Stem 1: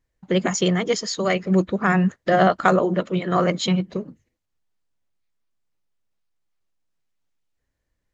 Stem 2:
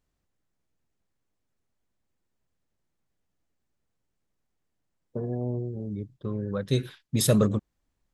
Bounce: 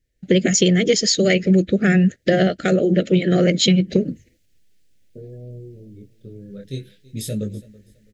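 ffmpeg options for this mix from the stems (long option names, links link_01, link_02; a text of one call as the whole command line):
ffmpeg -i stem1.wav -i stem2.wav -filter_complex "[0:a]dynaudnorm=framelen=150:gausssize=3:maxgain=15dB,volume=2.5dB[link_01];[1:a]flanger=delay=18:depth=7.7:speed=0.55,volume=-2.5dB,asplit=2[link_02][link_03];[link_03]volume=-21.5dB,aecho=0:1:329|658|987|1316:1|0.28|0.0784|0.022[link_04];[link_01][link_02][link_04]amix=inputs=3:normalize=0,asuperstop=centerf=1000:order=4:qfactor=0.75,acompressor=threshold=-12dB:ratio=6" out.wav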